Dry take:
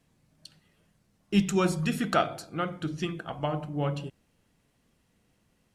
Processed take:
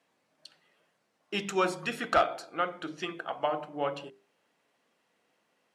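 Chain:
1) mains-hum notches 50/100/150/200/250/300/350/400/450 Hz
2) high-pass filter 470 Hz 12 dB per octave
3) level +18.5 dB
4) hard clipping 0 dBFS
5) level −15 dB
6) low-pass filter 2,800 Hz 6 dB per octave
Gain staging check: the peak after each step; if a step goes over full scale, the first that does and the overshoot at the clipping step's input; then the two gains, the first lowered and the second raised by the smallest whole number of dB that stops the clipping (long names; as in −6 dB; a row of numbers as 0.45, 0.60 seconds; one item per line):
−11.0, −10.5, +8.0, 0.0, −15.0, −15.0 dBFS
step 3, 8.0 dB
step 3 +10.5 dB, step 5 −7 dB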